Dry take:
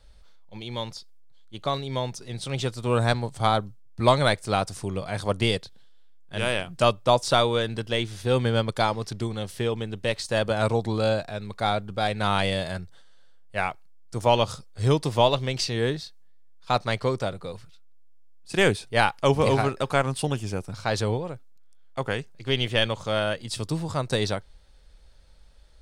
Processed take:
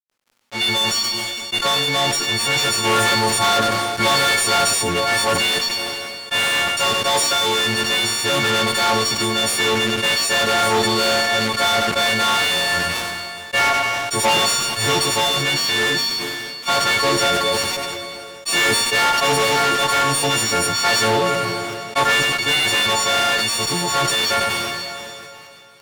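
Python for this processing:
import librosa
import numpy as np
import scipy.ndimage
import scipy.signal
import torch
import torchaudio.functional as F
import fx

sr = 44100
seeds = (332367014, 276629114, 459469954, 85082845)

p1 = fx.freq_snap(x, sr, grid_st=4)
p2 = fx.tilt_shelf(p1, sr, db=-7.0, hz=720.0)
p3 = fx.fuzz(p2, sr, gain_db=34.0, gate_db=-41.0)
p4 = p3 + fx.echo_single(p3, sr, ms=95, db=-13.0, dry=0)
p5 = fx.rider(p4, sr, range_db=10, speed_s=2.0)
p6 = fx.lowpass(p5, sr, hz=3100.0, slope=6)
p7 = fx.low_shelf(p6, sr, hz=110.0, db=-11.0)
p8 = fx.rev_plate(p7, sr, seeds[0], rt60_s=2.6, hf_ratio=0.95, predelay_ms=0, drr_db=19.5)
y = fx.sustainer(p8, sr, db_per_s=22.0)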